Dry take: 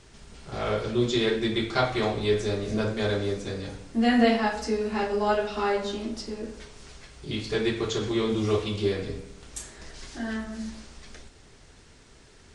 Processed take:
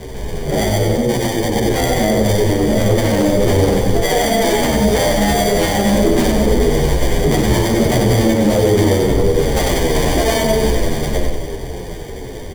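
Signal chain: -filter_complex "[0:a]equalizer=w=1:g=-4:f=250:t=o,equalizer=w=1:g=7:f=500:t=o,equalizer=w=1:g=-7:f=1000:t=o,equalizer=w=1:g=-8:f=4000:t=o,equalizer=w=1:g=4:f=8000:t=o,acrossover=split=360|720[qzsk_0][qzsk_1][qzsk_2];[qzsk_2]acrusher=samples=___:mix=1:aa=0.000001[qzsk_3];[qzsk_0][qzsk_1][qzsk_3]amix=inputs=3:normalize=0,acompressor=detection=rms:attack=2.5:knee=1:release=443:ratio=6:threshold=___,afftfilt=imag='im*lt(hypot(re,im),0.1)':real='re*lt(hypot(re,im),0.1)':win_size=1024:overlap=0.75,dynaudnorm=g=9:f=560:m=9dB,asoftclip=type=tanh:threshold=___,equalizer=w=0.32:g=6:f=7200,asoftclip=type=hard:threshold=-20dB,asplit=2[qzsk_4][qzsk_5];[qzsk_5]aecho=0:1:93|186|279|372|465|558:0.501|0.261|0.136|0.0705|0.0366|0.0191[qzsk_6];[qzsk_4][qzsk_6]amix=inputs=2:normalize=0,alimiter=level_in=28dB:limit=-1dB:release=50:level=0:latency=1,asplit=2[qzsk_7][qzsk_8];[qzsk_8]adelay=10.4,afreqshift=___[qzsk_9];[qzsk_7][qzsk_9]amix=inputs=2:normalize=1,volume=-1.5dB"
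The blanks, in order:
33, -29dB, -26dB, -1.9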